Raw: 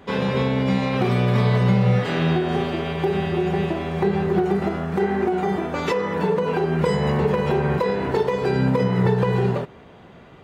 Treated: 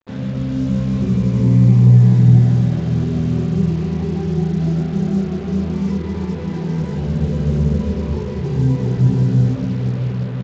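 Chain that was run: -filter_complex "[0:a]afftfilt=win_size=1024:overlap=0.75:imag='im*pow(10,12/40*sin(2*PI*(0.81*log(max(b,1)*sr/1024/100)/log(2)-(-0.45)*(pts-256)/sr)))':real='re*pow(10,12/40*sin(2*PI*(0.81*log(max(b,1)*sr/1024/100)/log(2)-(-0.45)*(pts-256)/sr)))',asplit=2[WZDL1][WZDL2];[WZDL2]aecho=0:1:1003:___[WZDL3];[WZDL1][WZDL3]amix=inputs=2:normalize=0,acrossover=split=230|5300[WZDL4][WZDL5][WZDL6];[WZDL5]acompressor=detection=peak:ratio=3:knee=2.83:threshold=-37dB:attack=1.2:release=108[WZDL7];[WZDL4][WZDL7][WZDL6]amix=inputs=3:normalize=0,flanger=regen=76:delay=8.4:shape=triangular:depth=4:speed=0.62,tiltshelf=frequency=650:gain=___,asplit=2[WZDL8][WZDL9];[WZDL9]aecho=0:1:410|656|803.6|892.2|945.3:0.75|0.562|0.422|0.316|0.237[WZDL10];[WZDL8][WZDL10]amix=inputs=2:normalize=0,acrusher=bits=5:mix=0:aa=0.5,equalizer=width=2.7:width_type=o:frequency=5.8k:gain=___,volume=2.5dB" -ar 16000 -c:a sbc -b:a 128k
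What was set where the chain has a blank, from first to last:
0.211, 6.5, -4.5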